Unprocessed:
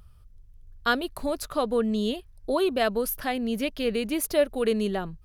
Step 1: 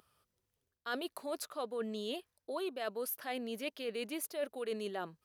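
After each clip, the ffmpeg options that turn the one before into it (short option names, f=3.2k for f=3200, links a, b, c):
-af "highpass=350,areverse,acompressor=threshold=-33dB:ratio=5,areverse,volume=-3dB"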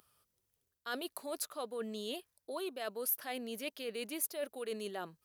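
-af "highshelf=f=6k:g=9.5,volume=-2dB"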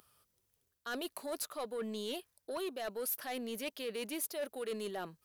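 -af "asoftclip=type=tanh:threshold=-35dB,volume=3dB"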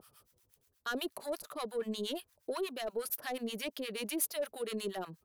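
-filter_complex "[0:a]asplit=2[a][b];[b]acompressor=threshold=-47dB:ratio=6,volume=2.5dB[c];[a][c]amix=inputs=2:normalize=0,acrossover=split=810[d][e];[d]aeval=exprs='val(0)*(1-1/2+1/2*cos(2*PI*8.4*n/s))':c=same[f];[e]aeval=exprs='val(0)*(1-1/2-1/2*cos(2*PI*8.4*n/s))':c=same[g];[f][g]amix=inputs=2:normalize=0,volume=3.5dB"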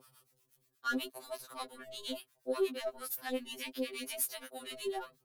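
-af "afftfilt=real='re*2.45*eq(mod(b,6),0)':imag='im*2.45*eq(mod(b,6),0)':win_size=2048:overlap=0.75,volume=1.5dB"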